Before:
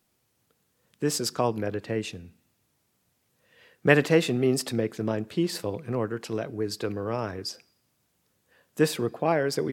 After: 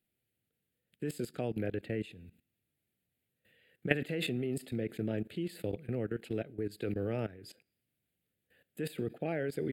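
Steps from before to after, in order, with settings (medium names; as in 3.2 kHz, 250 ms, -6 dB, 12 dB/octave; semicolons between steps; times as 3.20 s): static phaser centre 2.5 kHz, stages 4; level held to a coarse grid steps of 17 dB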